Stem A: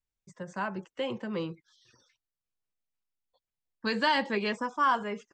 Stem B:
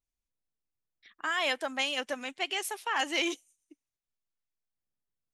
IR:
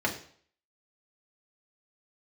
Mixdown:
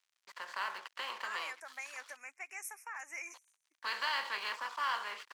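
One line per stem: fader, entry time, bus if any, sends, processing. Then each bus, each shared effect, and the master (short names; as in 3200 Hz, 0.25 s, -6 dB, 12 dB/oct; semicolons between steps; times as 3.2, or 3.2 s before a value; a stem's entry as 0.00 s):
-8.0 dB, 0.00 s, no send, per-bin compression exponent 0.4; crossover distortion -42.5 dBFS
-4.5 dB, 0.00 s, no send, elliptic band-stop 2400–5600 Hz; compressor, threshold -33 dBFS, peak gain reduction 7 dB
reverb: off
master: HPF 1200 Hz 12 dB/oct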